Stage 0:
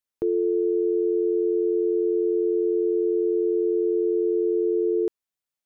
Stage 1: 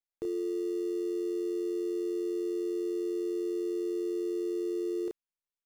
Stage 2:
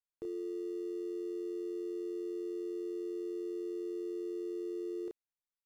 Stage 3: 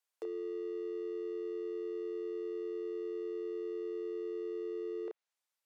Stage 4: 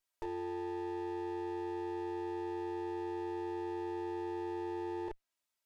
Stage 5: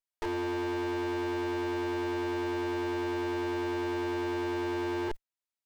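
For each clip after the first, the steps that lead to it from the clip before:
dead-time distortion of 0.086 ms; doubling 31 ms -6 dB; peak limiter -23.5 dBFS, peak gain reduction 7.5 dB; trim -3.5 dB
treble shelf 4.3 kHz -6 dB; trim -6.5 dB
high-pass 470 Hz 24 dB/octave; low-pass that closes with the level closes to 2.4 kHz, closed at -45.5 dBFS; trim +8 dB
comb filter that takes the minimum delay 3.1 ms; trim +2.5 dB
waveshaping leveller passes 5

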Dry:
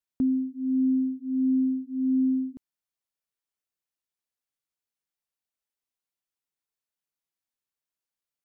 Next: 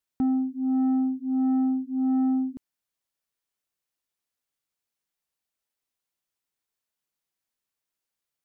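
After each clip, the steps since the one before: saturation -24 dBFS, distortion -16 dB; trim +4 dB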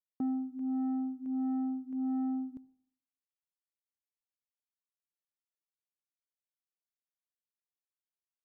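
gate with hold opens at -27 dBFS; on a send at -21 dB: reverberation RT60 0.65 s, pre-delay 52 ms; on the sum: trim -8.5 dB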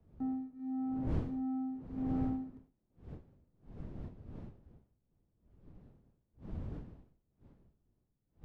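median filter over 41 samples; wind noise 230 Hz -42 dBFS; three bands expanded up and down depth 70%; trim -5.5 dB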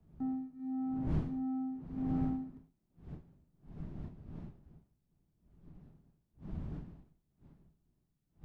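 graphic EQ with 31 bands 100 Hz -4 dB, 160 Hz +7 dB, 500 Hz -7 dB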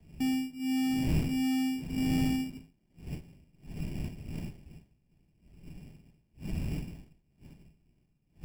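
low-pass 1.1 kHz 24 dB/octave; in parallel at +1 dB: peak limiter -32.5 dBFS, peak gain reduction 10.5 dB; on the sum: sample-and-hold 17×; trim +1.5 dB

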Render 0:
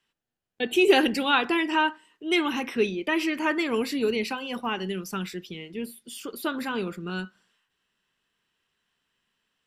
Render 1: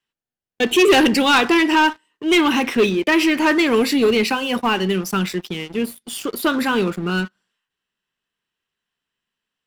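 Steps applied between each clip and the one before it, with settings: waveshaping leveller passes 3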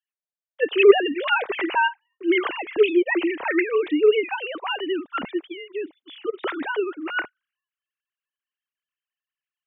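formants replaced by sine waves; trim -4.5 dB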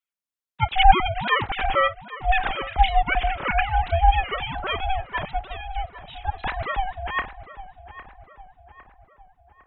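ring modulator 380 Hz; filtered feedback delay 806 ms, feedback 53%, low-pass 2.2 kHz, level -14 dB; trim +3 dB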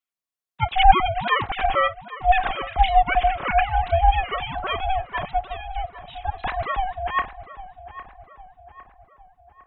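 small resonant body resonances 710/1100 Hz, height 8 dB; trim -1 dB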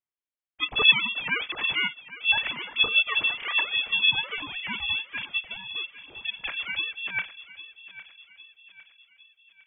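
frequency inversion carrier 3.4 kHz; trim -6.5 dB

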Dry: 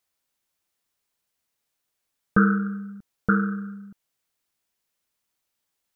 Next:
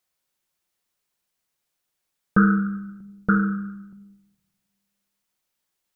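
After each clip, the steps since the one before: simulated room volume 3900 m³, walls furnished, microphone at 0.97 m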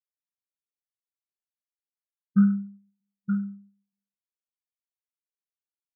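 spectral contrast expander 2.5:1; trim -5.5 dB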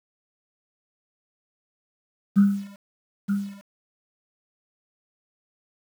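word length cut 8-bit, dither none

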